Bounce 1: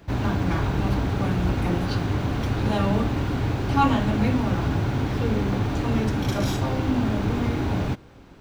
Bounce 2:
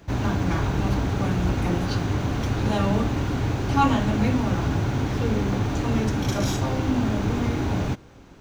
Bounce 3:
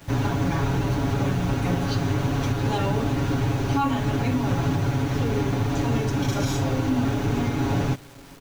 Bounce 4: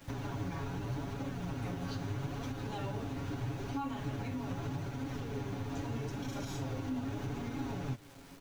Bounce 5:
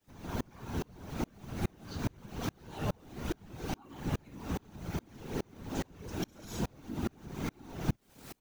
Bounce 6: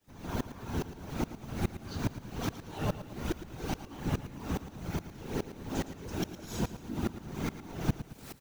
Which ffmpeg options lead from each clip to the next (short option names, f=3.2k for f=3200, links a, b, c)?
-af "equalizer=f=6.4k:w=3.2:g=6.5"
-af "aecho=1:1:7.2:0.78,alimiter=limit=-14dB:level=0:latency=1:release=203,acrusher=bits=7:mix=0:aa=0.000001"
-af "acompressor=threshold=-27dB:ratio=6,flanger=delay=3.7:depth=7.9:regen=55:speed=0.79:shape=sinusoidal,volume=-4dB"
-af "afftfilt=real='hypot(re,im)*cos(2*PI*random(0))':imag='hypot(re,im)*sin(2*PI*random(1))':win_size=512:overlap=0.75,crystalizer=i=1:c=0,aeval=exprs='val(0)*pow(10,-34*if(lt(mod(-2.4*n/s,1),2*abs(-2.4)/1000),1-mod(-2.4*n/s,1)/(2*abs(-2.4)/1000),(mod(-2.4*n/s,1)-2*abs(-2.4)/1000)/(1-2*abs(-2.4)/1000))/20)':c=same,volume=14dB"
-af "aecho=1:1:112|224|336|448|560:0.237|0.109|0.0502|0.0231|0.0106,volume=2dB"